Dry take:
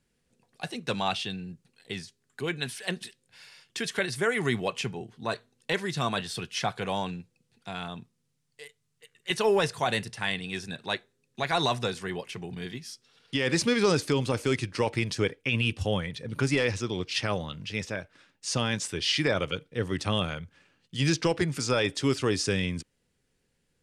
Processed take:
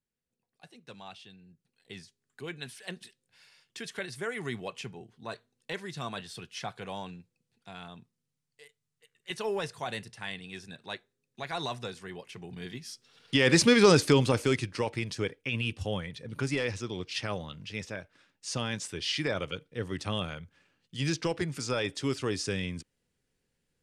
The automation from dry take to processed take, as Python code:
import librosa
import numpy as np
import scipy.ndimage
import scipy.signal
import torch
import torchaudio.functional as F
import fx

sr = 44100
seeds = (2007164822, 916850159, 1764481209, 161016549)

y = fx.gain(x, sr, db=fx.line((1.39, -18.0), (1.97, -8.5), (12.17, -8.5), (13.41, 4.0), (14.15, 4.0), (14.92, -5.0)))